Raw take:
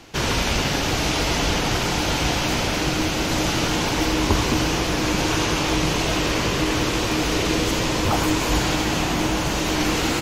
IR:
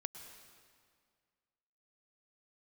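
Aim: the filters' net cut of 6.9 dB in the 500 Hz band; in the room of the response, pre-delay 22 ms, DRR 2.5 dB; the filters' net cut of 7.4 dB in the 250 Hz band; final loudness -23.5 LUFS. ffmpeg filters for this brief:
-filter_complex "[0:a]equalizer=f=250:t=o:g=-8,equalizer=f=500:t=o:g=-6.5,asplit=2[a][b];[1:a]atrim=start_sample=2205,adelay=22[c];[b][c]afir=irnorm=-1:irlink=0,volume=0dB[d];[a][d]amix=inputs=2:normalize=0,volume=-2.5dB"

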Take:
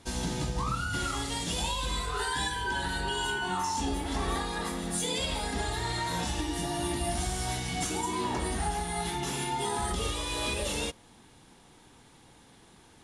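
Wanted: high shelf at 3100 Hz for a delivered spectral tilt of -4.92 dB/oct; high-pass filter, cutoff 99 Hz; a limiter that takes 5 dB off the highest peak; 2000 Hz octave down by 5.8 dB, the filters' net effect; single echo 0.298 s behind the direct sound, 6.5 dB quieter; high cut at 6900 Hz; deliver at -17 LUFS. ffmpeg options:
-af "highpass=99,lowpass=6.9k,equalizer=f=2k:t=o:g=-5.5,highshelf=f=3.1k:g=-8.5,alimiter=level_in=3dB:limit=-24dB:level=0:latency=1,volume=-3dB,aecho=1:1:298:0.473,volume=18.5dB"

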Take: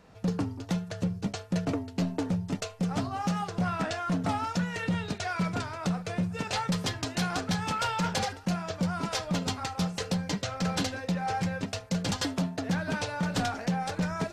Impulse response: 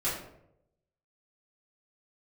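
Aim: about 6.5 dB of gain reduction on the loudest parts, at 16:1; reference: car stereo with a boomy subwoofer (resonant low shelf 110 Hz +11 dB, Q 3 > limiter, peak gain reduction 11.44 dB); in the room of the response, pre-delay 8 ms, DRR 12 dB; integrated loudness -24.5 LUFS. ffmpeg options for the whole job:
-filter_complex "[0:a]acompressor=threshold=-31dB:ratio=16,asplit=2[a][b];[1:a]atrim=start_sample=2205,adelay=8[c];[b][c]afir=irnorm=-1:irlink=0,volume=-19.5dB[d];[a][d]amix=inputs=2:normalize=0,lowshelf=f=110:t=q:w=3:g=11,volume=15dB,alimiter=limit=-16dB:level=0:latency=1"

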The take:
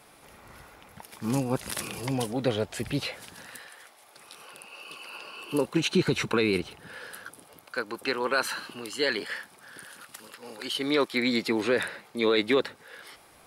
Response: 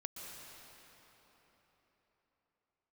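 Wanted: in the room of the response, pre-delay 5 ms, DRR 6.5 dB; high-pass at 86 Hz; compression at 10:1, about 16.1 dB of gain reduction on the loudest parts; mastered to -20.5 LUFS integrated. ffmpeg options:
-filter_complex "[0:a]highpass=86,acompressor=threshold=-36dB:ratio=10,asplit=2[a][b];[1:a]atrim=start_sample=2205,adelay=5[c];[b][c]afir=irnorm=-1:irlink=0,volume=-5dB[d];[a][d]amix=inputs=2:normalize=0,volume=20.5dB"

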